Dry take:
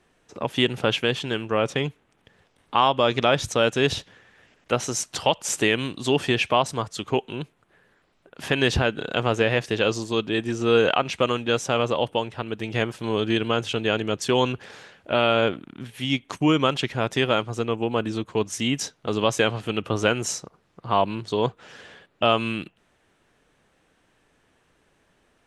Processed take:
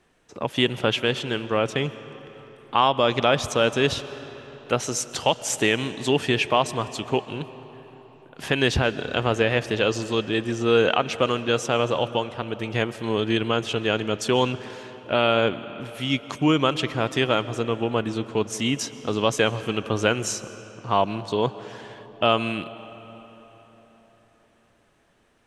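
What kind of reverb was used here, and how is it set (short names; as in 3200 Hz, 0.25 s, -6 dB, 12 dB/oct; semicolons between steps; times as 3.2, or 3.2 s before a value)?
digital reverb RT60 4.3 s, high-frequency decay 0.65×, pre-delay 90 ms, DRR 14.5 dB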